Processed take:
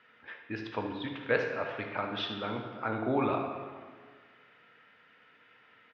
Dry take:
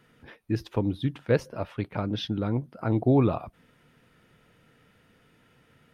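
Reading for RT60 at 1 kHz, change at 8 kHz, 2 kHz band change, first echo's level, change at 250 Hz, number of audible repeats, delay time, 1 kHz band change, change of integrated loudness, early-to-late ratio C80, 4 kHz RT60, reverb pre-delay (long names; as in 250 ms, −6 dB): 1.6 s, can't be measured, +5.5 dB, −12.0 dB, −8.5 dB, 1, 74 ms, +1.5 dB, −6.0 dB, 6.5 dB, 1.3 s, 3 ms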